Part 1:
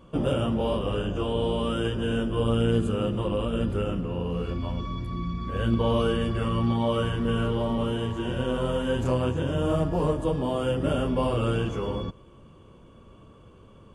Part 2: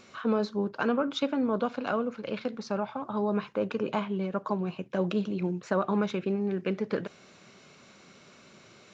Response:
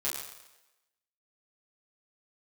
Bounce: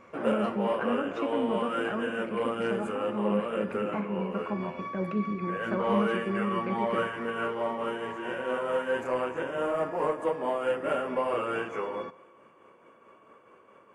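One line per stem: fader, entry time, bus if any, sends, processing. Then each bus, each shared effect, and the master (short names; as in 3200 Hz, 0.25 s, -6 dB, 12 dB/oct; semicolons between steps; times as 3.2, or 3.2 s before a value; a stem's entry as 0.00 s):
+2.5 dB, 0.00 s, send -19.5 dB, HPF 480 Hz 12 dB/oct; soft clip -18.5 dBFS, distortion -26 dB; tremolo triangle 4.6 Hz, depth 45%
-9.5 dB, 0.00 s, send -10.5 dB, low shelf 290 Hz +8 dB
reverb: on, RT60 1.0 s, pre-delay 7 ms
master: resonant high shelf 2700 Hz -7.5 dB, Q 3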